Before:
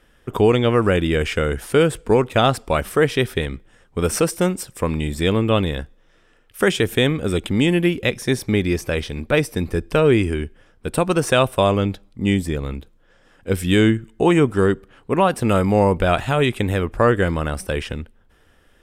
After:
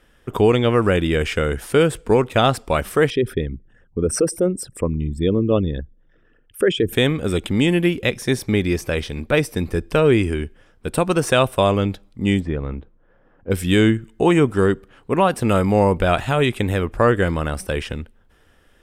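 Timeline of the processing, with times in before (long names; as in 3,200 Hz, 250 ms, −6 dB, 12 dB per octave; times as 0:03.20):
0:03.10–0:06.93: spectral envelope exaggerated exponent 2
0:12.39–0:13.50: low-pass filter 2,200 Hz → 1,000 Hz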